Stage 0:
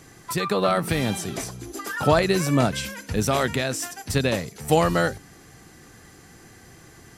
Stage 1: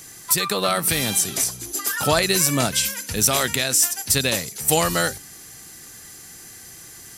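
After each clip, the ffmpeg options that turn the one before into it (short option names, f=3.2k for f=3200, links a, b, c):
-af "crystalizer=i=6:c=0,volume=-3dB"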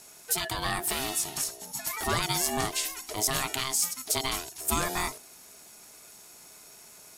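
-af "aeval=exprs='val(0)*sin(2*PI*530*n/s)':c=same,volume=-6dB"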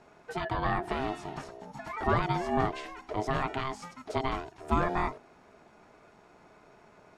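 -af "lowpass=1.4k,volume=3.5dB"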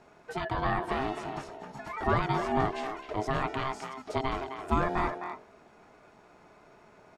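-filter_complex "[0:a]asplit=2[a][b];[b]adelay=260,highpass=300,lowpass=3.4k,asoftclip=type=hard:threshold=-21.5dB,volume=-7dB[c];[a][c]amix=inputs=2:normalize=0"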